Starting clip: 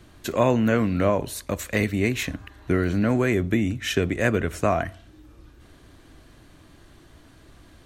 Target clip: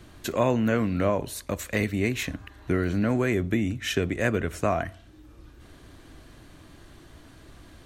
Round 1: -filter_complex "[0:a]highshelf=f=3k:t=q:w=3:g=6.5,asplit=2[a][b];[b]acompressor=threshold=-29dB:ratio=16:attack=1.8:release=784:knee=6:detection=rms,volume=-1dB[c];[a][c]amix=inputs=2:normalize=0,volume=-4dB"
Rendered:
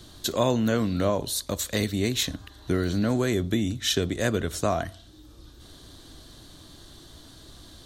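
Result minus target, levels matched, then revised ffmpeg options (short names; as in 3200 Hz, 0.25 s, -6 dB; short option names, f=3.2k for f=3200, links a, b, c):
4000 Hz band +7.5 dB
-filter_complex "[0:a]asplit=2[a][b];[b]acompressor=threshold=-29dB:ratio=16:attack=1.8:release=784:knee=6:detection=rms,volume=-1dB[c];[a][c]amix=inputs=2:normalize=0,volume=-4dB"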